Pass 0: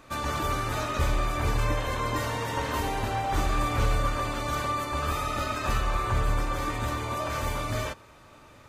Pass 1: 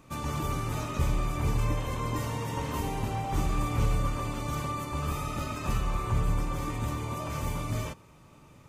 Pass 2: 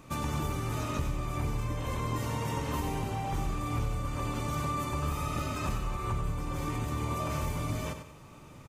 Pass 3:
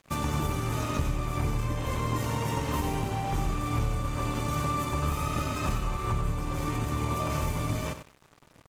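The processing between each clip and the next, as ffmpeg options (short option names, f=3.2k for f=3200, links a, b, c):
-af "equalizer=f=160:t=o:w=0.67:g=9,equalizer=f=630:t=o:w=0.67:g=-5,equalizer=f=1.6k:t=o:w=0.67:g=-9,equalizer=f=4k:t=o:w=0.67:g=-6,volume=-2dB"
-af "acompressor=threshold=-33dB:ratio=6,aecho=1:1:95|190|285|380:0.355|0.121|0.041|0.0139,volume=3.5dB"
-af "aeval=exprs='sgn(val(0))*max(abs(val(0))-0.00422,0)':c=same,volume=4.5dB"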